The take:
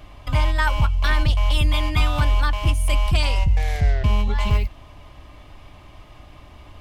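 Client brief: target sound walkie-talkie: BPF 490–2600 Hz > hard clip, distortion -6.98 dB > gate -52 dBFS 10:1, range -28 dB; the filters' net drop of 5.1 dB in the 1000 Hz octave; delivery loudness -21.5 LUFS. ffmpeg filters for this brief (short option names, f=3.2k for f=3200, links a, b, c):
-af "highpass=490,lowpass=2.6k,equalizer=f=1k:t=o:g=-5.5,asoftclip=type=hard:threshold=-31.5dB,agate=range=-28dB:threshold=-52dB:ratio=10,volume=14dB"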